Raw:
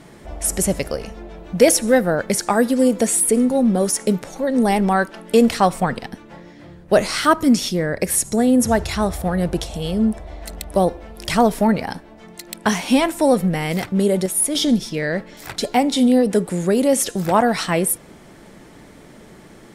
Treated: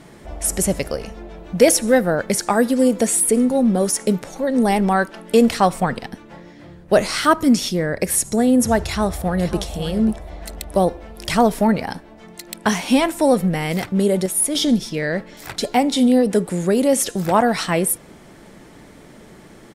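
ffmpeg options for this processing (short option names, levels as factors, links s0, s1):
-filter_complex "[0:a]asplit=2[s0][s1];[s1]afade=t=in:st=8.83:d=0.01,afade=t=out:st=9.61:d=0.01,aecho=0:1:540|1080:0.251189|0.0376783[s2];[s0][s2]amix=inputs=2:normalize=0"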